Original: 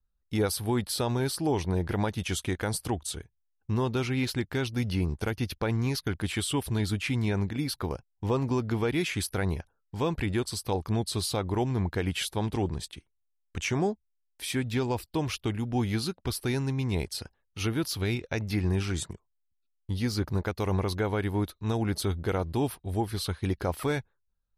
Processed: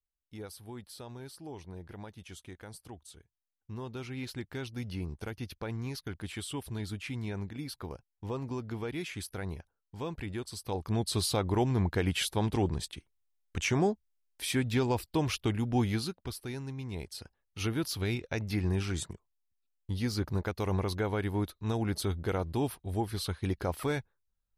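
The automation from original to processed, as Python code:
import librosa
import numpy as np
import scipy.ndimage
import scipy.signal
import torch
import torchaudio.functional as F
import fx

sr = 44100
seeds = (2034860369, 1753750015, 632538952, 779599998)

y = fx.gain(x, sr, db=fx.line((3.15, -17.0), (4.44, -9.0), (10.48, -9.0), (11.13, 0.0), (15.8, 0.0), (16.44, -10.0), (16.95, -10.0), (17.61, -3.0)))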